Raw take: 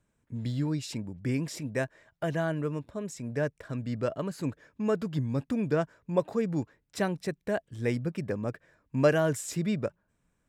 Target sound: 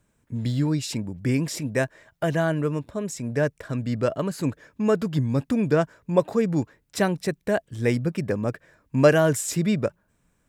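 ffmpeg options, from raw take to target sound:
ffmpeg -i in.wav -af "highshelf=frequency=7700:gain=4.5,volume=6.5dB" out.wav

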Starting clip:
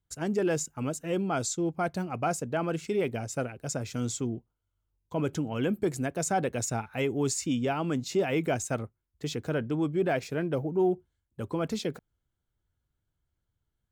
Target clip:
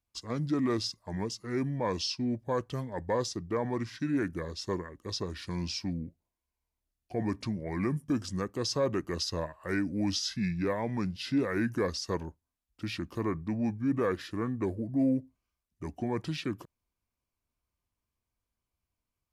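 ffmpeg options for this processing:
ffmpeg -i in.wav -af "lowshelf=frequency=130:gain=-9,asetrate=31752,aresample=44100,volume=-1dB" out.wav

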